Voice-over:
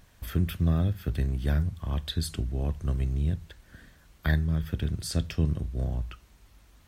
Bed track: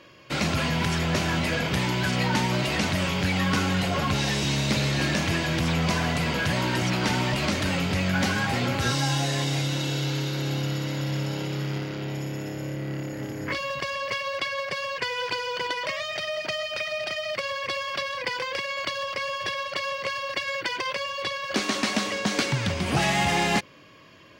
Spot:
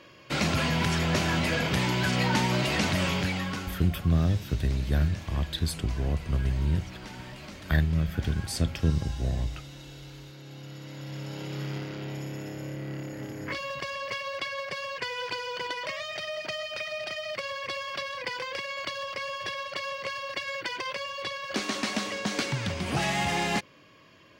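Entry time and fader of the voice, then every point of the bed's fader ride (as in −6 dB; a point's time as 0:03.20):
3.45 s, +1.0 dB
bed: 0:03.14 −1 dB
0:03.93 −18 dB
0:10.43 −18 dB
0:11.62 −4.5 dB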